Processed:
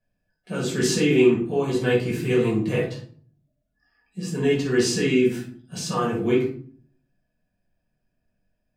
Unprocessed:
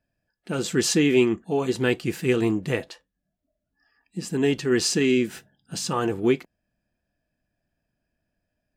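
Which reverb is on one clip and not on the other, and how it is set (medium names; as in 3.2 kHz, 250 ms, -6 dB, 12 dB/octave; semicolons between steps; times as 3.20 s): simulated room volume 480 m³, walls furnished, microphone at 5.6 m; trim -8.5 dB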